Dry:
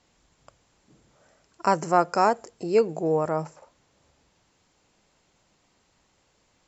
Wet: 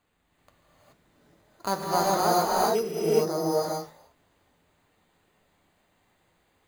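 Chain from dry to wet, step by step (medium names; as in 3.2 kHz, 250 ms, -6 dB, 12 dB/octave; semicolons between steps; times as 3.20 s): careless resampling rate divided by 8×, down none, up hold; flange 1.8 Hz, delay 9.5 ms, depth 3.3 ms, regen +60%; gated-style reverb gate 450 ms rising, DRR -5.5 dB; trim -3.5 dB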